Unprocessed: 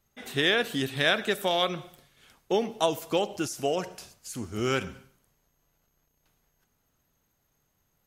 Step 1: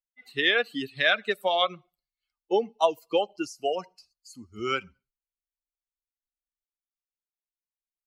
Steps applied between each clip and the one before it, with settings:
spectral dynamics exaggerated over time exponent 2
three-way crossover with the lows and the highs turned down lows −15 dB, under 310 Hz, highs −16 dB, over 4,600 Hz
level +6 dB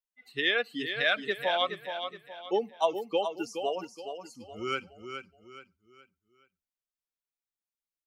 repeating echo 421 ms, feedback 37%, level −8 dB
level −4 dB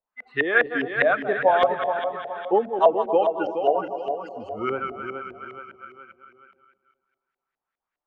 feedback delay that plays each chunk backwards 133 ms, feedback 58%, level −9 dB
auto-filter low-pass saw up 4.9 Hz 610–1,900 Hz
one half of a high-frequency compander encoder only
level +6 dB

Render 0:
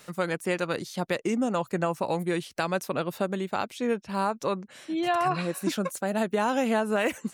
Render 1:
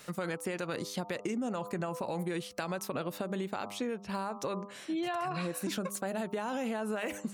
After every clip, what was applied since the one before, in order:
hum removal 100.6 Hz, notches 13
brickwall limiter −22 dBFS, peak gain reduction 7.5 dB
downward compressor, threshold −31 dBFS, peak gain reduction 6 dB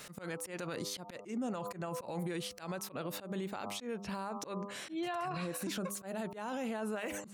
volume swells 205 ms
brickwall limiter −34 dBFS, peak gain reduction 10.5 dB
level +3.5 dB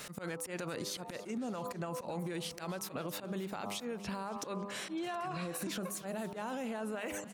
downward compressor, threshold −39 dBFS, peak gain reduction 6 dB
single-tap delay 670 ms −24 dB
feedback echo with a swinging delay time 278 ms, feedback 49%, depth 117 cents, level −17 dB
level +3.5 dB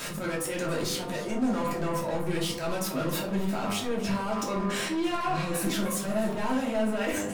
leveller curve on the samples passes 1
in parallel at −5 dB: wave folding −38 dBFS
on the sum: rectangular room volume 270 cubic metres, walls furnished, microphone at 2.8 metres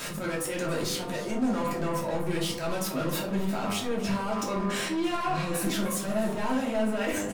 single-tap delay 355 ms −21.5 dB

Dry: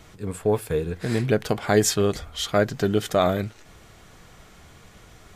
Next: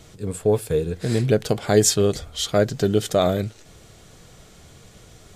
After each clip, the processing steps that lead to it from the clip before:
octave-band graphic EQ 125/500/1,000/2,000/4,000/8,000 Hz +4/+4/−4/−3/+3/+5 dB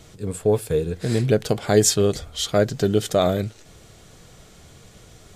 no processing that can be heard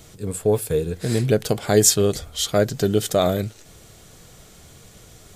high-shelf EQ 10,000 Hz +11.5 dB

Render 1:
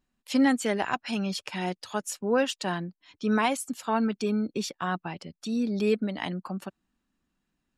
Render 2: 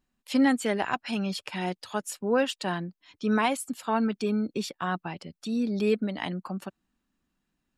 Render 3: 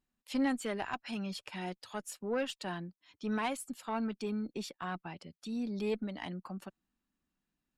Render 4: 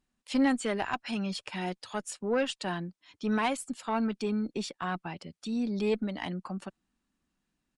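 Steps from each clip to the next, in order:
dynamic equaliser 6,100 Hz, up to −6 dB, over −55 dBFS, Q 3.3
one-sided soft clipper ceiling −17 dBFS; level −7.5 dB
downsampling to 22,050 Hz; level +5.5 dB

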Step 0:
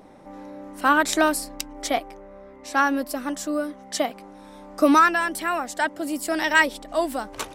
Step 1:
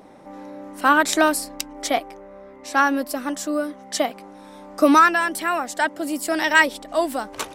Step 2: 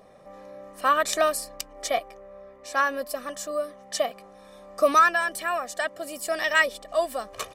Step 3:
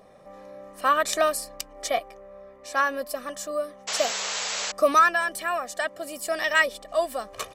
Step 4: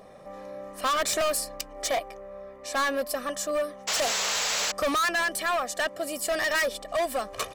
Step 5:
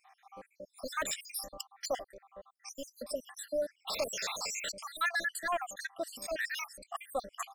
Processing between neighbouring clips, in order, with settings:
low-shelf EQ 86 Hz −9.5 dB; level +2.5 dB
comb filter 1.7 ms, depth 72%; level −6.5 dB
sound drawn into the spectrogram noise, 0:03.87–0:04.72, 410–7,900 Hz −30 dBFS
gain into a clipping stage and back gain 26.5 dB; level +3.5 dB
time-frequency cells dropped at random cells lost 72%; level −4.5 dB

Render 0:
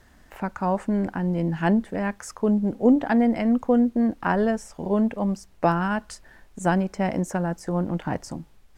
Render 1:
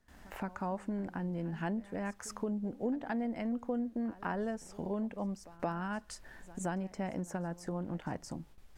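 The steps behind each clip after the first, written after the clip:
noise gate with hold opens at −45 dBFS
downward compressor 2.5 to 1, threshold −37 dBFS, peak gain reduction 16 dB
echo ahead of the sound 172 ms −19.5 dB
level −2 dB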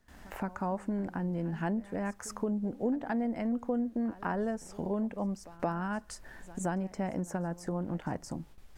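dynamic equaliser 3,300 Hz, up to −5 dB, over −57 dBFS, Q 0.92
level +3.5 dB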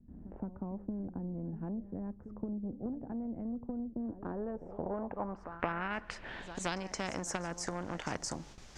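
harmonic generator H 3 −15 dB, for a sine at −17.5 dBFS
low-pass filter sweep 220 Hz → 6,300 Hz, 0:03.92–0:06.97
every bin compressed towards the loudest bin 2 to 1
level +1.5 dB

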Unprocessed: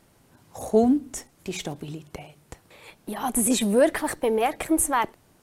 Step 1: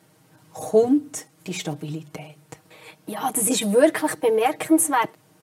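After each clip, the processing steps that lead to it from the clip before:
high-pass filter 89 Hz 24 dB per octave
comb filter 6.4 ms, depth 89%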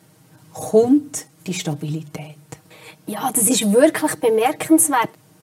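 bass and treble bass +5 dB, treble +3 dB
level +2.5 dB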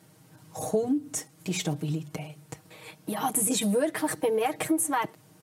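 downward compressor 6 to 1, threshold −18 dBFS, peak gain reduction 10.5 dB
level −4.5 dB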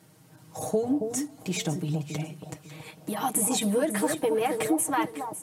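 delay that swaps between a low-pass and a high-pass 275 ms, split 1,000 Hz, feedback 50%, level −6 dB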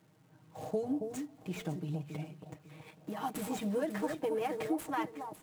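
running median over 9 samples
surface crackle 550 per second −55 dBFS
level −8 dB

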